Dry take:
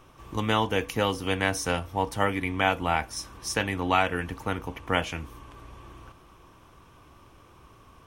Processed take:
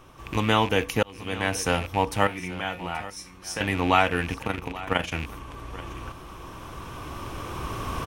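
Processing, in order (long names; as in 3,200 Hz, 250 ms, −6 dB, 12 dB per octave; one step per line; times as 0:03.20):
loose part that buzzes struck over −39 dBFS, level −27 dBFS
camcorder AGC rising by 6.6 dB per second
0:01.03–0:01.71: fade in
0:02.27–0:03.61: tuned comb filter 180 Hz, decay 0.27 s, harmonics all, mix 80%
0:04.38–0:05.12: amplitude modulation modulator 24 Hz, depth 60%
single-tap delay 830 ms −17 dB
level +3 dB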